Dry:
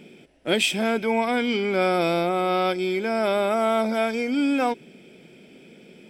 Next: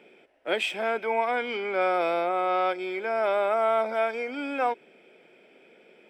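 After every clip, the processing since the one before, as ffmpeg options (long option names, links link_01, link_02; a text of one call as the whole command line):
ffmpeg -i in.wav -filter_complex "[0:a]acrossover=split=420 2500:gain=0.0794 1 0.178[link_01][link_02][link_03];[link_01][link_02][link_03]amix=inputs=3:normalize=0" out.wav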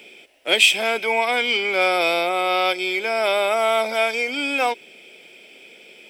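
ffmpeg -i in.wav -af "aexciter=amount=3:drive=8.9:freq=2300,volume=4dB" out.wav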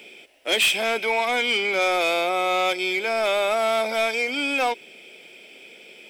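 ffmpeg -i in.wav -af "asoftclip=type=tanh:threshold=-15dB" out.wav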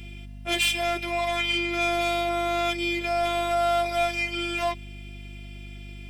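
ffmpeg -i in.wav -af "afftfilt=real='hypot(re,im)*cos(PI*b)':imag='0':win_size=512:overlap=0.75,aeval=exprs='val(0)+0.0112*(sin(2*PI*50*n/s)+sin(2*PI*2*50*n/s)/2+sin(2*PI*3*50*n/s)/3+sin(2*PI*4*50*n/s)/4+sin(2*PI*5*50*n/s)/5)':channel_layout=same" out.wav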